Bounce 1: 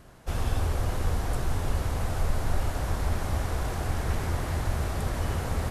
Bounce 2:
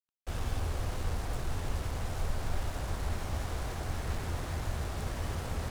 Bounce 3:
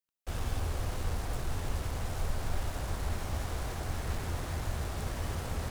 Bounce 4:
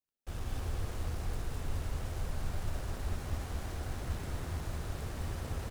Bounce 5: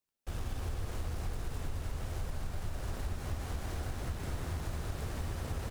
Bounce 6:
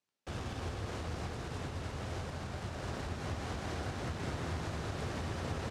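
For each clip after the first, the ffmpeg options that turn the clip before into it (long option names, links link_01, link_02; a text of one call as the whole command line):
ffmpeg -i in.wav -af "lowpass=10000,acrusher=bits=5:mix=0:aa=0.5,volume=-6.5dB" out.wav
ffmpeg -i in.wav -af "highshelf=frequency=9600:gain=4" out.wav
ffmpeg -i in.wav -filter_complex "[0:a]asplit=2[link_01][link_02];[link_02]acrusher=samples=38:mix=1:aa=0.000001,volume=-7dB[link_03];[link_01][link_03]amix=inputs=2:normalize=0,aecho=1:1:210:0.668,volume=-7dB" out.wav
ffmpeg -i in.wav -af "acompressor=threshold=-35dB:ratio=6,volume=3dB" out.wav
ffmpeg -i in.wav -af "highpass=110,lowpass=6200,volume=4dB" out.wav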